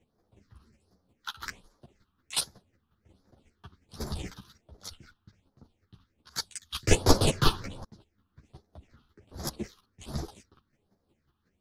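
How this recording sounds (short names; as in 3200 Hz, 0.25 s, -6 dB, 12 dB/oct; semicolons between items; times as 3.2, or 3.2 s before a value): phasing stages 6, 1.3 Hz, lowest notch 550–2700 Hz; chopped level 5.5 Hz, depth 60%, duty 15%; a shimmering, thickened sound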